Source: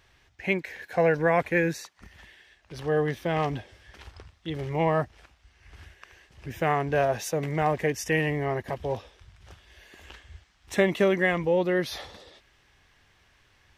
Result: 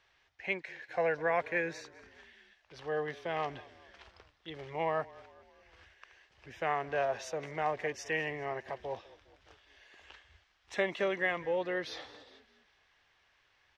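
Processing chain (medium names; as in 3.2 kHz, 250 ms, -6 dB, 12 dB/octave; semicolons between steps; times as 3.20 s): three-band isolator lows -12 dB, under 430 Hz, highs -23 dB, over 6.5 kHz; frequency-shifting echo 204 ms, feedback 55%, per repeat -32 Hz, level -21 dB; trim -6 dB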